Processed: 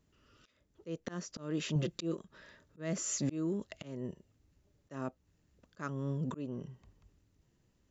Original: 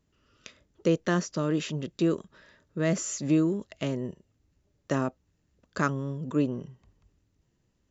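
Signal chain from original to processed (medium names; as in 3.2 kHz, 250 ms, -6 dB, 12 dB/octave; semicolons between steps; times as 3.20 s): 1.75–2.17 s: comb 5.8 ms, depth 77%; slow attack 435 ms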